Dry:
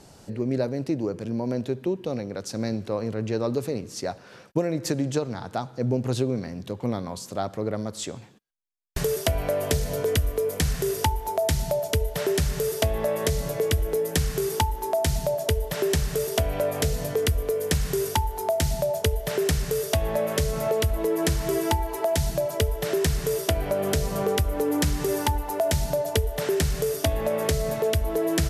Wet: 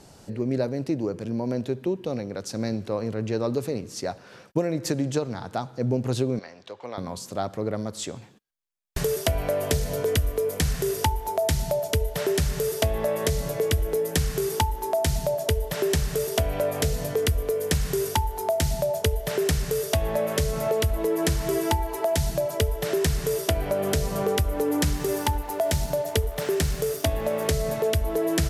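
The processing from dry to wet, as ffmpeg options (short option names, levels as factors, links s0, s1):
-filter_complex "[0:a]asettb=1/sr,asplit=3[s0][s1][s2];[s0]atrim=end=6.394[s3];[s1]atrim=start=6.39:end=6.98,asetpts=PTS-STARTPTS,afade=t=in:d=0.004:c=qsin,afade=t=out:st=0.586:d=0.004:c=qsin,acrossover=split=480 6500:gain=0.0794 1 0.0708[s4][s5][s6];[s4][s5][s6]amix=inputs=3:normalize=0[s7];[s2]atrim=start=6.976[s8];[s3][s7]acrossfade=d=0.004:c1=hsin:c2=qsin[s9];[s9][s8]acrossfade=d=0.004:c1=qsin:c2=hsin,asettb=1/sr,asplit=3[s10][s11][s12];[s10]atrim=end=24.934[s13];[s11]atrim=start=24.93:end=27.48,asetpts=PTS-STARTPTS,afade=t=in:d=0.004:c=qsin,afade=t=out:st=2.546:d=0.004:c=qsin,aeval=exprs='sgn(val(0))*max(abs(val(0))-0.00631,0)':c=same[s14];[s12]atrim=start=27.476[s15];[s13][s14]acrossfade=d=0.004:c1=hsin:c2=qsin[s16];[s16][s15]acrossfade=d=0.004:c1=qsin:c2=hsin"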